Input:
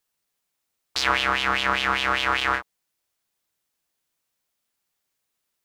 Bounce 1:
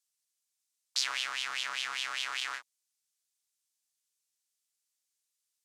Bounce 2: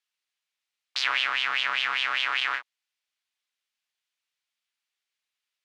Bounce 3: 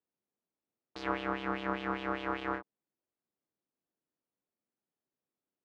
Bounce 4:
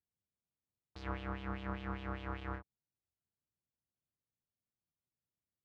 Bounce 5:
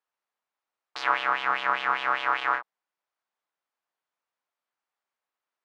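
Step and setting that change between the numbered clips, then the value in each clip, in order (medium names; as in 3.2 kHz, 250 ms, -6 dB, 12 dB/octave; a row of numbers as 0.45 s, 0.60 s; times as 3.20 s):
band-pass filter, frequency: 7.3 kHz, 2.8 kHz, 280 Hz, 100 Hz, 1 kHz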